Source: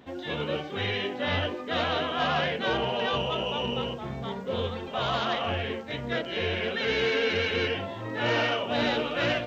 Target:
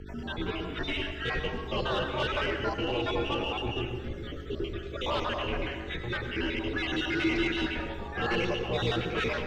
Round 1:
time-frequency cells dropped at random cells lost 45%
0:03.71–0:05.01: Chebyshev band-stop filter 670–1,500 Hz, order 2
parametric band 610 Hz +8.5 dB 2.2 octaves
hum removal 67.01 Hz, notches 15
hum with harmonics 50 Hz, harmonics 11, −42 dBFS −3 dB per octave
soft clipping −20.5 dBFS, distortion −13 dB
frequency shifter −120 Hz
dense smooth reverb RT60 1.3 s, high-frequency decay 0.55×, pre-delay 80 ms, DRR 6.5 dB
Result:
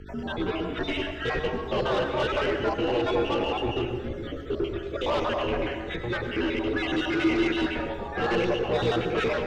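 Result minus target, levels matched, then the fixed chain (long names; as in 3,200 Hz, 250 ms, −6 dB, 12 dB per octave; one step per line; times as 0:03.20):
500 Hz band +2.5 dB
time-frequency cells dropped at random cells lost 45%
0:03.71–0:05.01: Chebyshev band-stop filter 670–1,500 Hz, order 2
hum removal 67.01 Hz, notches 15
hum with harmonics 50 Hz, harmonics 11, −42 dBFS −3 dB per octave
soft clipping −20.5 dBFS, distortion −21 dB
frequency shifter −120 Hz
dense smooth reverb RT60 1.3 s, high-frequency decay 0.55×, pre-delay 80 ms, DRR 6.5 dB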